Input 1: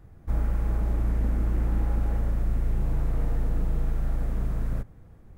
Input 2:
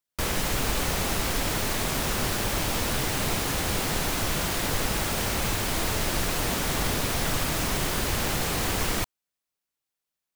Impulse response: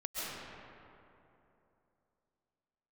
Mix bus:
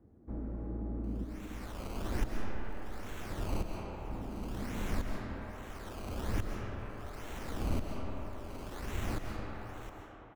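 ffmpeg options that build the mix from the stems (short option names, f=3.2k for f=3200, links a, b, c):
-filter_complex "[0:a]bandpass=f=270:t=q:w=1.5:csg=0,volume=-0.5dB,asplit=3[a][b][c];[a]atrim=end=1.24,asetpts=PTS-STARTPTS,afade=t=out:st=1.236:d=0.004:c=hsin[d];[b]atrim=start=1.24:end=4.09,asetpts=PTS-STARTPTS,volume=0[e];[c]atrim=start=4.09,asetpts=PTS-STARTPTS,afade=t=in:d=0.004:c=hsin[f];[d][e][f]concat=n=3:v=0:a=1,asplit=2[g][h];[h]volume=-7.5dB[i];[1:a]acrusher=samples=17:mix=1:aa=0.000001:lfo=1:lforange=17:lforate=1.2,aeval=exprs='val(0)*pow(10,-40*if(lt(mod(-0.72*n/s,1),2*abs(-0.72)/1000),1-mod(-0.72*n/s,1)/(2*abs(-0.72)/1000),(mod(-0.72*n/s,1)-2*abs(-0.72)/1000)/(1-2*abs(-0.72)/1000))/20)':c=same,adelay=850,volume=-3dB,asplit=2[j][k];[k]volume=-4dB[l];[2:a]atrim=start_sample=2205[m];[i][l]amix=inputs=2:normalize=0[n];[n][m]afir=irnorm=-1:irlink=0[o];[g][j][o]amix=inputs=3:normalize=0,equalizer=f=150:w=3.7:g=-11.5,acrossover=split=290[p][q];[q]acompressor=threshold=-47dB:ratio=2.5[r];[p][r]amix=inputs=2:normalize=0"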